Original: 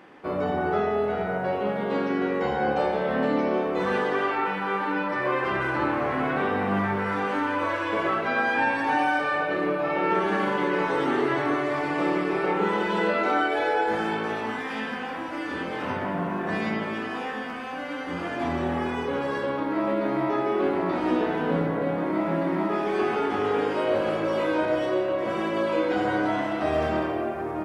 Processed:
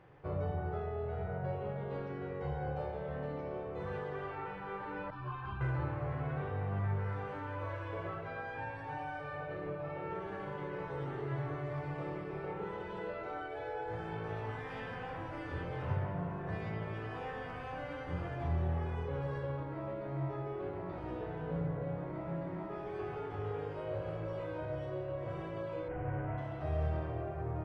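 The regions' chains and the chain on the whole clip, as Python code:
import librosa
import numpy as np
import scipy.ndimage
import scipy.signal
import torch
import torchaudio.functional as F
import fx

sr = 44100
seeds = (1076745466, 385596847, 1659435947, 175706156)

y = fx.chain(x, sr, fx.fixed_phaser(hz=2000.0, stages=6),
    fx.comb(ms=3.8, depth=0.36),
    fx.ensemble(), at=(5.1, 5.61))
y = fx.chain(y, sr, fx.delta_mod(bps=16000, step_db=-30.0),
    fx.lowpass(hz=2400.0, slope=24), at=(25.88, 26.38))
y = fx.high_shelf(y, sr, hz=3300.0, db=-8.5)
y = fx.rider(y, sr, range_db=10, speed_s=0.5)
y = fx.curve_eq(y, sr, hz=(140.0, 220.0, 450.0, 1100.0), db=(0, -28, -16, -20))
y = y * 10.0 ** (3.5 / 20.0)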